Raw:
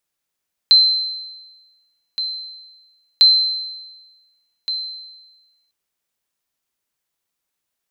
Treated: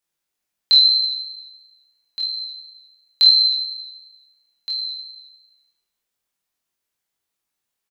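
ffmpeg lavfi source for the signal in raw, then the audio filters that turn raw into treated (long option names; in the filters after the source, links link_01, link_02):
-f lavfi -i "aevalsrc='0.562*(sin(2*PI*4090*mod(t,2.5))*exp(-6.91*mod(t,2.5)/1.24)+0.224*sin(2*PI*4090*max(mod(t,2.5)-1.47,0))*exp(-6.91*max(mod(t,2.5)-1.47,0)/1.24))':duration=5:sample_rate=44100"
-af "flanger=delay=22.5:depth=3.9:speed=2.9,aecho=1:1:20|52|103.2|185.1|316.2:0.631|0.398|0.251|0.158|0.1"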